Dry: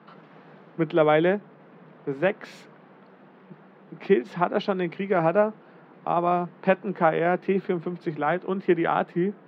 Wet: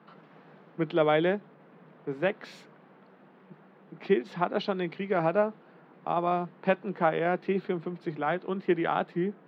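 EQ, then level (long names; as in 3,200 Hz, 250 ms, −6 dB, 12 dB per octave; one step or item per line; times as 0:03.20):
dynamic equaliser 4,000 Hz, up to +6 dB, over −52 dBFS, Q 1.8
−4.5 dB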